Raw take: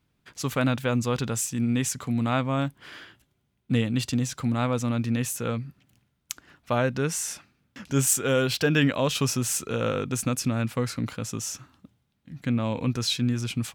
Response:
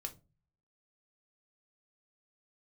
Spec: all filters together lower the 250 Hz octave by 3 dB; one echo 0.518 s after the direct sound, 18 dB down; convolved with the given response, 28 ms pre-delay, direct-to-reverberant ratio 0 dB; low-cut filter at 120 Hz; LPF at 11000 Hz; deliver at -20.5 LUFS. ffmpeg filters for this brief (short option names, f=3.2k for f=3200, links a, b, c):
-filter_complex "[0:a]highpass=120,lowpass=11k,equalizer=f=250:t=o:g=-3,aecho=1:1:518:0.126,asplit=2[a][b];[1:a]atrim=start_sample=2205,adelay=28[c];[b][c]afir=irnorm=-1:irlink=0,volume=2.5dB[d];[a][d]amix=inputs=2:normalize=0,volume=4.5dB"